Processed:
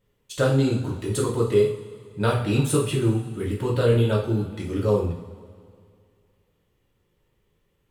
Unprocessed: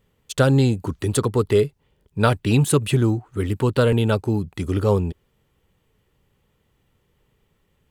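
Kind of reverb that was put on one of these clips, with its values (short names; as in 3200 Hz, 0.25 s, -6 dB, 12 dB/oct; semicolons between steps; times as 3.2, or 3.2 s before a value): two-slope reverb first 0.49 s, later 2.3 s, from -17 dB, DRR -4 dB; gain -9 dB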